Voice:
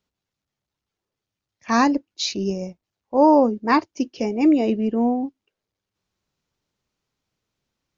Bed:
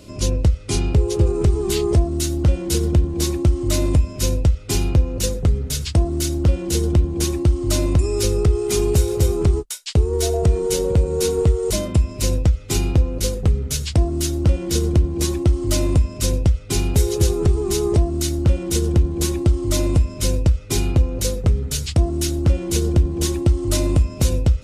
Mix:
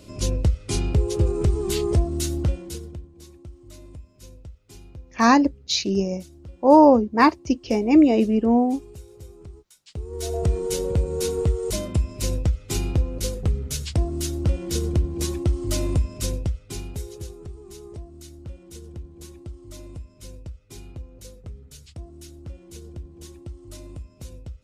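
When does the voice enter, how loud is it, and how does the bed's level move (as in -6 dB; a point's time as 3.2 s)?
3.50 s, +2.0 dB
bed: 2.39 s -4 dB
3.12 s -25.5 dB
9.69 s -25.5 dB
10.38 s -5.5 dB
16.18 s -5.5 dB
17.43 s -21.5 dB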